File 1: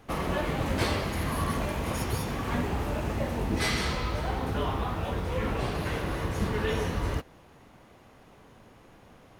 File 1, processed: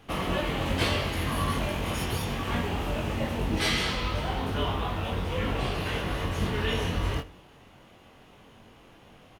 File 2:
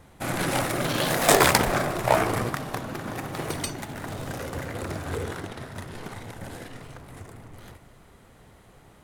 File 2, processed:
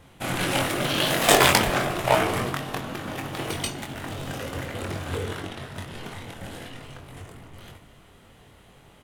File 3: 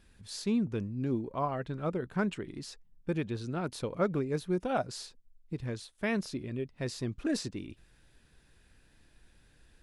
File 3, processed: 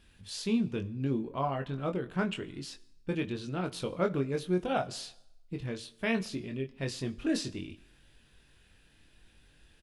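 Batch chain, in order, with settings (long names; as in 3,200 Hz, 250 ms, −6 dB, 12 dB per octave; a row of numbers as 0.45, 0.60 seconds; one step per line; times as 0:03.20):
parametric band 3,000 Hz +7.5 dB 0.61 octaves
double-tracking delay 22 ms −5.5 dB
dense smooth reverb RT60 0.86 s, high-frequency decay 0.85×, DRR 16.5 dB
level −1 dB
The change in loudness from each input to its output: +1.0, +1.5, +0.5 LU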